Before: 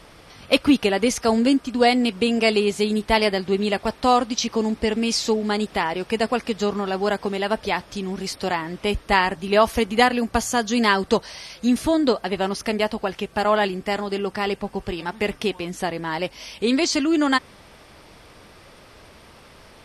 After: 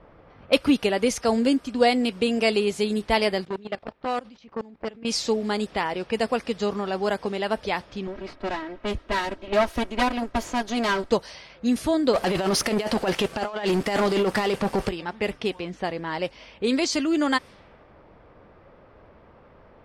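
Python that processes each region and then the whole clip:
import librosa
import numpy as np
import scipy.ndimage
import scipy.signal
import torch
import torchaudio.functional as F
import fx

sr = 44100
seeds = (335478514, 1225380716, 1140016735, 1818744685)

y = fx.chain(x, sr, fx.level_steps(step_db=21),
    fx.transformer_sat(knee_hz=990.0), at=(3.45, 5.05))
y = fx.chain(y, sr, fx.lower_of_two(delay_ms=3.1),
    fx.high_shelf(hz=4600.0, db=-6.5), at=(8.07, 11.12))
y = fx.chain(y, sr, fx.peak_eq(hz=62.0, db=-7.5, octaves=2.2),
    fx.over_compress(threshold_db=-27.0, ratio=-0.5),
    fx.leveller(passes=3), at=(12.13, 14.89))
y = fx.env_lowpass(y, sr, base_hz=1200.0, full_db=-18.5)
y = fx.peak_eq(y, sr, hz=530.0, db=3.5, octaves=0.39)
y = y * 10.0 ** (-3.5 / 20.0)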